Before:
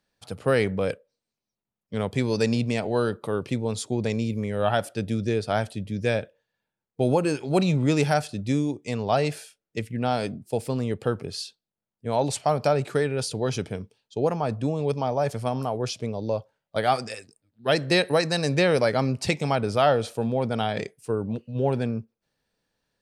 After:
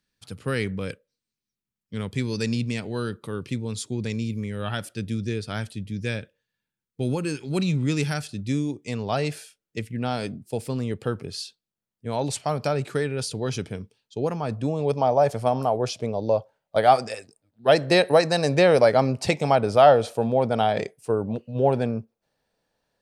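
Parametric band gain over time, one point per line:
parametric band 680 Hz 1.2 octaves
0:08.23 −13.5 dB
0:08.82 −4.5 dB
0:14.40 −4.5 dB
0:15.02 +7 dB

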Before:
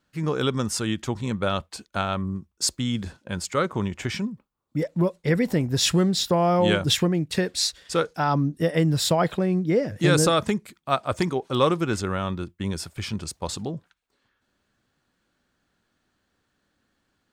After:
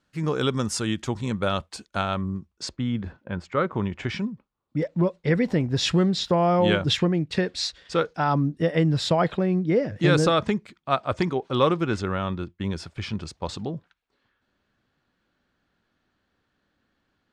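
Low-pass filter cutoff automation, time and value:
0:01.86 9,900 Hz
0:02.52 5,400 Hz
0:02.81 2,000 Hz
0:03.48 2,000 Hz
0:04.21 4,400 Hz

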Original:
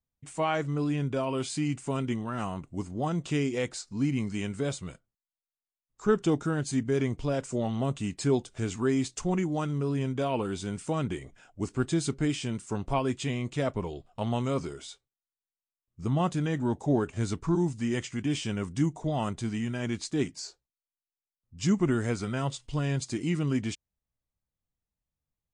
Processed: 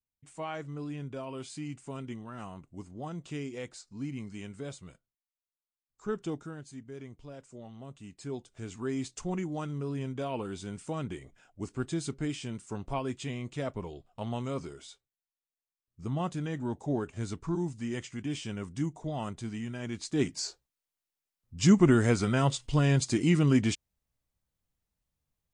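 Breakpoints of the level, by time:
0:06.30 −9.5 dB
0:06.73 −17 dB
0:07.84 −17 dB
0:09.08 −5.5 dB
0:19.91 −5.5 dB
0:20.41 +4.5 dB

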